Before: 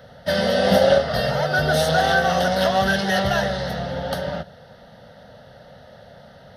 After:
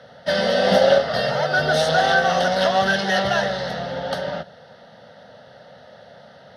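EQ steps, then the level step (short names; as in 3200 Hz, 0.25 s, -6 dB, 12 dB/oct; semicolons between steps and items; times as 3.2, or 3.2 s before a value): HPF 88 Hz; LPF 7100 Hz 12 dB/oct; low shelf 180 Hz -9 dB; +1.5 dB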